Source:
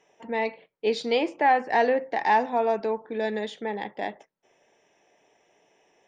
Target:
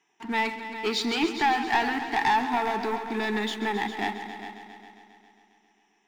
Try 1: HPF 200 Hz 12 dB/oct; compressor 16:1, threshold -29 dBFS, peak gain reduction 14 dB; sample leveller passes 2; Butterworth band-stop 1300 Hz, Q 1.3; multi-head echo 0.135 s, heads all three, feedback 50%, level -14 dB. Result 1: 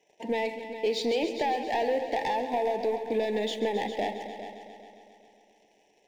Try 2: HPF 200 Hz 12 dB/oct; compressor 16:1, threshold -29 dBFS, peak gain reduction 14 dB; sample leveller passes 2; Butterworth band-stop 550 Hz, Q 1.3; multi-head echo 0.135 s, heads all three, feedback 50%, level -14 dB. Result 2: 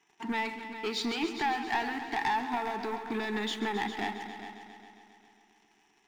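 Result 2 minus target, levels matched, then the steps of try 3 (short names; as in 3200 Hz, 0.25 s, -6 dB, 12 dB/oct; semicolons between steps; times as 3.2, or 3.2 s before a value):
compressor: peak gain reduction +7.5 dB
HPF 200 Hz 12 dB/oct; compressor 16:1, threshold -21 dBFS, peak gain reduction 6.5 dB; sample leveller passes 2; Butterworth band-stop 550 Hz, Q 1.3; multi-head echo 0.135 s, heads all three, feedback 50%, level -14 dB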